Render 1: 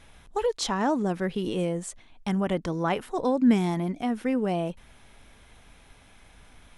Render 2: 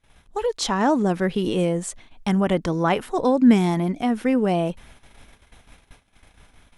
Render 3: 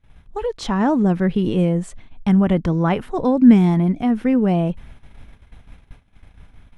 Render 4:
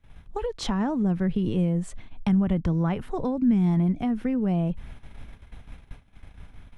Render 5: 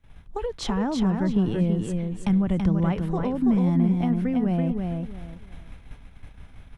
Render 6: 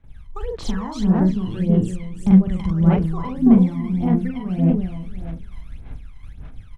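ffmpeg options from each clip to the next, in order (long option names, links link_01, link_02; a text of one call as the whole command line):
ffmpeg -i in.wav -af "agate=range=-20dB:threshold=-51dB:ratio=16:detection=peak,dynaudnorm=framelen=170:gausssize=7:maxgain=6dB" out.wav
ffmpeg -i in.wav -af "bass=frequency=250:gain=10,treble=frequency=4000:gain=-9,volume=-1dB" out.wav
ffmpeg -i in.wav -filter_complex "[0:a]acrossover=split=150[link_01][link_02];[link_02]acompressor=threshold=-28dB:ratio=4[link_03];[link_01][link_03]amix=inputs=2:normalize=0" out.wav
ffmpeg -i in.wav -af "aecho=1:1:331|662|993:0.596|0.143|0.0343" out.wav
ffmpeg -i in.wav -filter_complex "[0:a]asplit=2[link_01][link_02];[link_02]adelay=43,volume=-3dB[link_03];[link_01][link_03]amix=inputs=2:normalize=0,aphaser=in_gain=1:out_gain=1:delay=1:decay=0.76:speed=1.7:type=sinusoidal,volume=-5dB" out.wav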